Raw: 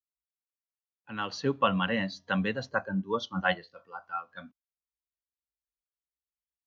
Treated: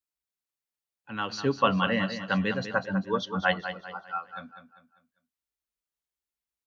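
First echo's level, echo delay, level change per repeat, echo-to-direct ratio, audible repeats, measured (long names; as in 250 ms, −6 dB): −10.0 dB, 198 ms, −8.5 dB, −9.5 dB, 3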